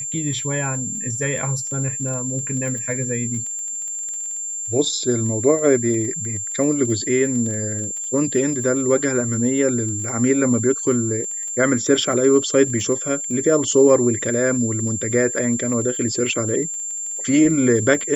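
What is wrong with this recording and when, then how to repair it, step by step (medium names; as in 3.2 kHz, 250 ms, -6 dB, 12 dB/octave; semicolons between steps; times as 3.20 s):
crackle 24 per s -29 dBFS
whine 7.3 kHz -25 dBFS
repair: de-click; band-stop 7.3 kHz, Q 30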